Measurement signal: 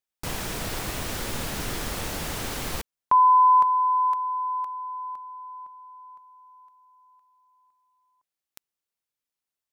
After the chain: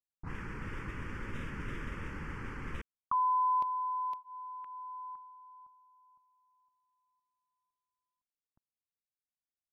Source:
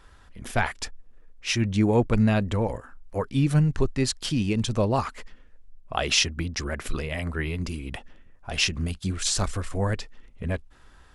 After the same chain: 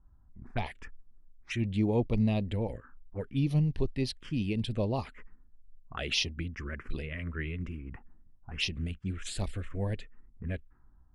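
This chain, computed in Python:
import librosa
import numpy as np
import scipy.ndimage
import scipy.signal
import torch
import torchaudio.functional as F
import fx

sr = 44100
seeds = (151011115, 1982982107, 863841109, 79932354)

y = fx.env_lowpass(x, sr, base_hz=380.0, full_db=-21.0)
y = fx.env_phaser(y, sr, low_hz=450.0, high_hz=1500.0, full_db=-19.5)
y = F.gain(torch.from_numpy(y), -6.0).numpy()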